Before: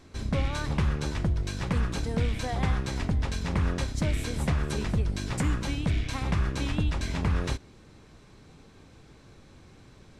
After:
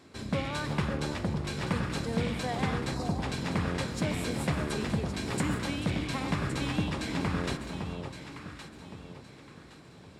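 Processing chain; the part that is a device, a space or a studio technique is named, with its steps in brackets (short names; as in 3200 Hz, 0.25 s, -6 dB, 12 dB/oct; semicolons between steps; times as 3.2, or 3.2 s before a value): HPF 140 Hz 12 dB/oct; saturated reverb return (on a send at -5.5 dB: reverb RT60 1.3 s, pre-delay 0.119 s + soft clip -36 dBFS, distortion -7 dB); on the sum: notch 6100 Hz, Q 11; spectral delete 2.94–3.19, 1300–3700 Hz; echo with dull and thin repeats by turns 0.558 s, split 1000 Hz, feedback 57%, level -5 dB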